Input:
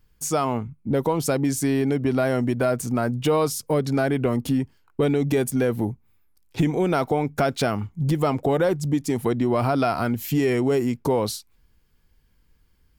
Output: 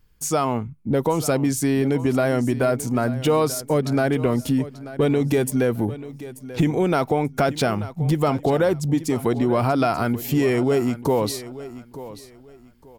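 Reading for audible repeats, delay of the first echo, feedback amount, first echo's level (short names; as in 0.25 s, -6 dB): 2, 0.886 s, 25%, -15.5 dB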